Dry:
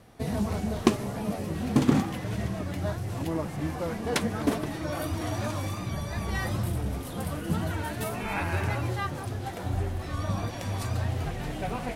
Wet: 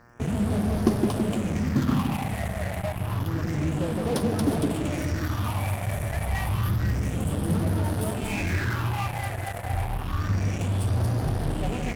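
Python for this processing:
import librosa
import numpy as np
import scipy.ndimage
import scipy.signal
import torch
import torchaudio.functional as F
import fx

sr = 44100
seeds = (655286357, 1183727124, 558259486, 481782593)

p1 = fx.peak_eq(x, sr, hz=4000.0, db=-11.5, octaves=0.33)
p2 = p1 + fx.echo_split(p1, sr, split_hz=670.0, low_ms=164, high_ms=231, feedback_pct=52, wet_db=-3.5, dry=0)
p3 = fx.dmg_crackle(p2, sr, seeds[0], per_s=200.0, level_db=-47.0)
p4 = fx.phaser_stages(p3, sr, stages=6, low_hz=310.0, high_hz=2200.0, hz=0.29, feedback_pct=40)
p5 = fx.dmg_buzz(p4, sr, base_hz=120.0, harmonics=15, level_db=-53.0, tilt_db=0, odd_only=False)
p6 = fx.fuzz(p5, sr, gain_db=35.0, gate_db=-33.0)
p7 = p5 + (p6 * 10.0 ** (-11.0 / 20.0))
y = p7 * 10.0 ** (-3.5 / 20.0)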